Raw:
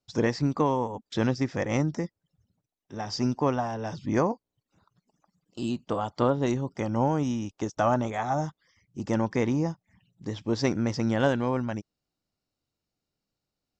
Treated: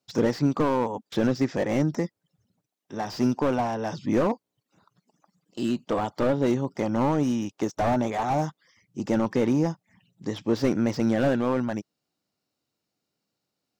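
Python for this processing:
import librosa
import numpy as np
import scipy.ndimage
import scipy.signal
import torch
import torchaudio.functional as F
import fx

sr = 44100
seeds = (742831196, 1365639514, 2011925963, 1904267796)

y = scipy.signal.sosfilt(scipy.signal.butter(2, 150.0, 'highpass', fs=sr, output='sos'), x)
y = fx.slew_limit(y, sr, full_power_hz=37.0)
y = F.gain(torch.from_numpy(y), 4.5).numpy()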